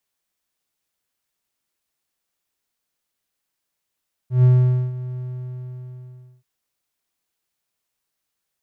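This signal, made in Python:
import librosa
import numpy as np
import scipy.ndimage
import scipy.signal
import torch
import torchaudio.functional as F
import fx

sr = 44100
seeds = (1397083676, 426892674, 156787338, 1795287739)

y = fx.adsr_tone(sr, wave='triangle', hz=126.0, attack_ms=135.0, decay_ms=482.0, sustain_db=-17.0, held_s=0.87, release_ms=1260.0, level_db=-7.0)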